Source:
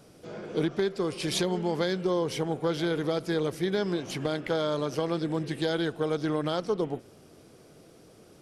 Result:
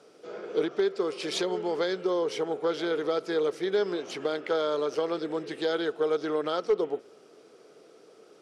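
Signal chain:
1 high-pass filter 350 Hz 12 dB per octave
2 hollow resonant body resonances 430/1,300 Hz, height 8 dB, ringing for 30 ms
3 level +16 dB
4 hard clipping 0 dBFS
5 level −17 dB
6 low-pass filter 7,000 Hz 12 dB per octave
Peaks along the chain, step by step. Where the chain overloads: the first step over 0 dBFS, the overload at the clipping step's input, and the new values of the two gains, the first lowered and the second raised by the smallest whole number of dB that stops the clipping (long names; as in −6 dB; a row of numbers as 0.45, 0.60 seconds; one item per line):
−15.5, −12.0, +4.0, 0.0, −17.0, −17.0 dBFS
step 3, 4.0 dB
step 3 +12 dB, step 5 −13 dB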